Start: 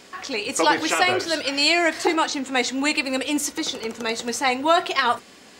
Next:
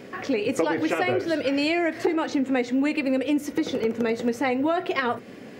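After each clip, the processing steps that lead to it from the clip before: graphic EQ 125/250/500/1000/2000/4000/8000 Hz +12/+7/+9/-4/+4/-6/-11 dB; compression 5:1, threshold -21 dBFS, peak gain reduction 12 dB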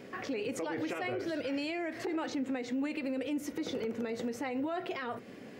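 peak limiter -21 dBFS, peak gain reduction 11 dB; trim -6.5 dB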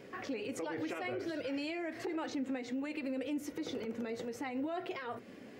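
flange 1.4 Hz, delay 1.8 ms, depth 2 ms, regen -65%; trim +1 dB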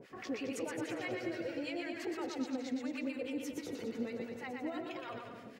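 harmonic tremolo 6.2 Hz, depth 100%, crossover 950 Hz; on a send: bouncing-ball echo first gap 120 ms, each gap 0.8×, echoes 5; on the sum: trim +1.5 dB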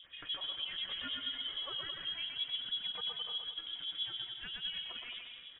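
careless resampling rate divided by 8×, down filtered, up hold; frequency inversion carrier 3.6 kHz; trim -1 dB

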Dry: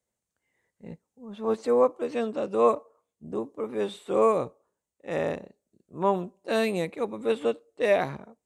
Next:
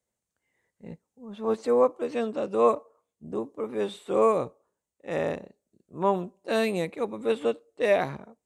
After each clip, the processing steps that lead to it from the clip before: no audible change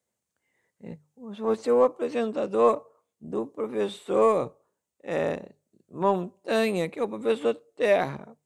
high-pass 73 Hz; hum notches 50/100/150 Hz; in parallel at -11.5 dB: saturation -25.5 dBFS, distortion -7 dB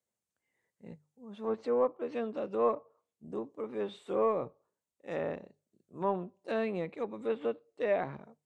low-pass that closes with the level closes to 2.2 kHz, closed at -21.5 dBFS; trim -8 dB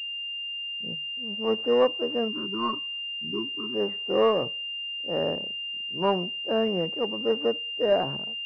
level-controlled noise filter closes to 310 Hz, open at -30 dBFS; time-frequency box 2.28–3.75 s, 430–910 Hz -26 dB; class-D stage that switches slowly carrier 2.8 kHz; trim +7.5 dB

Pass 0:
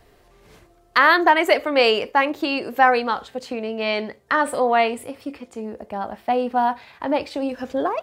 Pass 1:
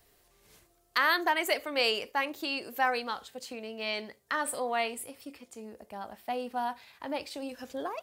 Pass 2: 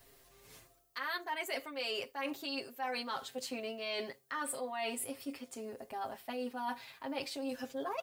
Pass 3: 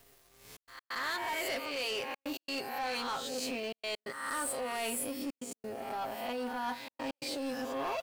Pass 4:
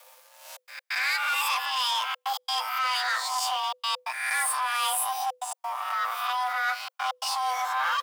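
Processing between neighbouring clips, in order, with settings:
pre-emphasis filter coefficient 0.8
comb 7.5 ms, depth 91%; reverse; compression 10:1, threshold -35 dBFS, peak gain reduction 17 dB; reverse; added noise violet -76 dBFS
reverse spectral sustain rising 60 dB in 0.79 s; waveshaping leveller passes 3; trance gate "xxxxx.x.xxxxxx" 133 bpm -60 dB; trim -8 dB
frequency shift +500 Hz; trim +8.5 dB

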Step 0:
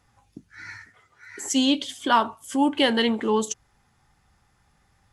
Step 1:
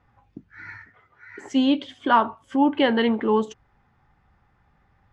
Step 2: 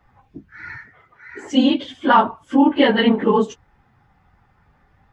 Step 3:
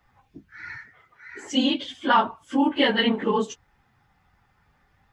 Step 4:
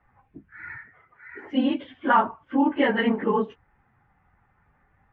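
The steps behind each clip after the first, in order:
low-pass 2.1 kHz 12 dB/octave; trim +2 dB
phase randomisation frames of 50 ms; trim +5 dB
treble shelf 2.1 kHz +10.5 dB; trim -7.5 dB
low-pass 2.2 kHz 24 dB/octave

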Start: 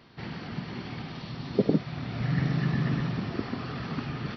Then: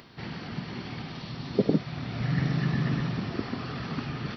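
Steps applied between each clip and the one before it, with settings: treble shelf 4.9 kHz +5 dB; upward compressor, threshold -47 dBFS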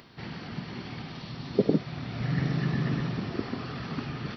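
dynamic bell 400 Hz, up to +3 dB, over -38 dBFS, Q 1.4; trim -1.5 dB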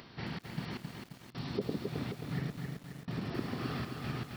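compression 4:1, threshold -34 dBFS, peak gain reduction 14.5 dB; trance gate "xx.x...xx" 78 bpm -24 dB; bit-crushed delay 266 ms, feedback 55%, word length 9-bit, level -4 dB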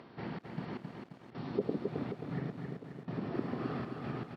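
band-pass filter 470 Hz, Q 0.56; delay 1134 ms -16.5 dB; trim +3 dB

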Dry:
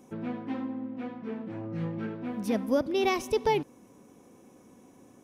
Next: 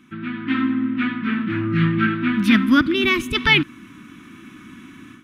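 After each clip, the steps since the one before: level rider gain up to 11 dB; FFT filter 330 Hz 0 dB, 480 Hz -27 dB, 820 Hz -17 dB, 1.3 kHz +10 dB, 3.5 kHz +9 dB, 5.6 kHz -8 dB; time-frequency box 2.94–3.35 s, 690–6200 Hz -9 dB; trim +4 dB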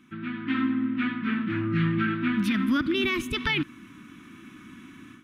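peak limiter -11.5 dBFS, peak gain reduction 9.5 dB; trim -5 dB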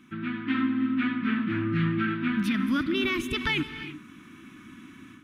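in parallel at +2 dB: gain riding within 5 dB 0.5 s; on the sum: gated-style reverb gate 370 ms rising, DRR 11.5 dB; trim -8 dB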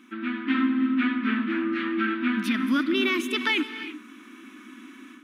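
brick-wall FIR high-pass 210 Hz; trim +3 dB

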